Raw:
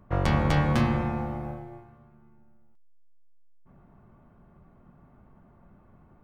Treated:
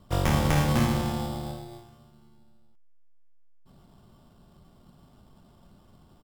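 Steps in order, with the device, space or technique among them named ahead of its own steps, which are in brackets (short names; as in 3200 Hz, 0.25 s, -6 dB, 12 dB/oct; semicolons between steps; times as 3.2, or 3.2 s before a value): crushed at another speed (playback speed 0.8×; sample-and-hold 13×; playback speed 1.25×)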